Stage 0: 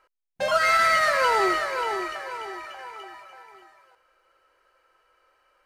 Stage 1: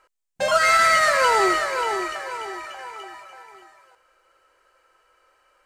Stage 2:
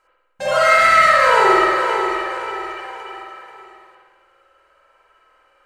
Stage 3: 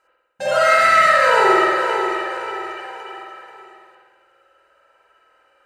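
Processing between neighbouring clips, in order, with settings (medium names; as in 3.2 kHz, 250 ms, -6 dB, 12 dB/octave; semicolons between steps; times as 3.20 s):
peaking EQ 7.6 kHz +7.5 dB 0.57 oct; trim +3 dB
spring tank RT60 1.4 s, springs 51 ms, chirp 40 ms, DRR -8 dB; trim -3.5 dB
comb of notches 1.1 kHz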